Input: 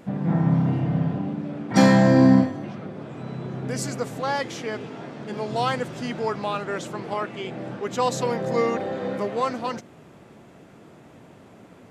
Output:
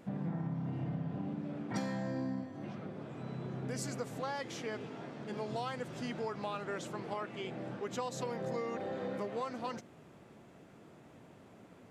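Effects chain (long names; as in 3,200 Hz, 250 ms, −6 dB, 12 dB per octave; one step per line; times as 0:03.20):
downward compressor 16 to 1, threshold −25 dBFS, peak gain reduction 15 dB
level −8.5 dB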